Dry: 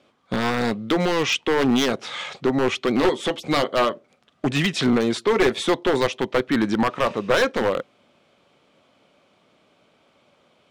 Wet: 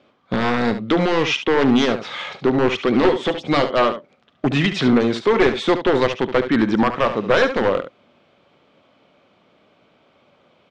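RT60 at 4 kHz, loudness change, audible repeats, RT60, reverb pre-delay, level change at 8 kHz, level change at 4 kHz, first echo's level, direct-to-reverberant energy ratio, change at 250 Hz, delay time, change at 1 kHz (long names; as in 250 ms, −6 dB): no reverb audible, +3.0 dB, 1, no reverb audible, no reverb audible, can't be measured, +1.0 dB, −10.5 dB, no reverb audible, +3.5 dB, 71 ms, +3.0 dB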